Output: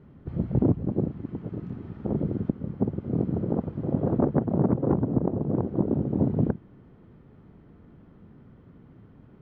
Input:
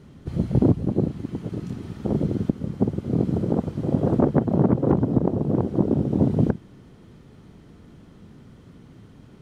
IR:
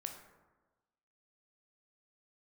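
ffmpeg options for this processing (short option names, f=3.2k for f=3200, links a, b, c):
-af "lowpass=1.8k,volume=-4dB"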